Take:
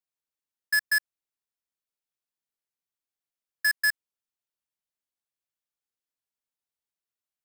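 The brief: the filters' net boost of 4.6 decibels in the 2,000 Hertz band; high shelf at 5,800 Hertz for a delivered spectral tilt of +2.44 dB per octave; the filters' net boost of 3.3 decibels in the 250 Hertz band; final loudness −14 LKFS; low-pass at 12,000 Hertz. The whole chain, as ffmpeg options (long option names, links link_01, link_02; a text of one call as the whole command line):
ffmpeg -i in.wav -af "lowpass=12000,equalizer=frequency=250:width_type=o:gain=3.5,equalizer=frequency=2000:width_type=o:gain=5,highshelf=frequency=5800:gain=5,volume=7.5dB" out.wav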